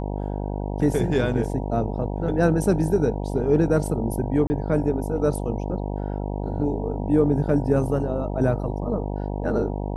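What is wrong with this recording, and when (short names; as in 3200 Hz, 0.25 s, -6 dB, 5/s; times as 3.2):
buzz 50 Hz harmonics 19 -28 dBFS
4.47–4.5 gap 30 ms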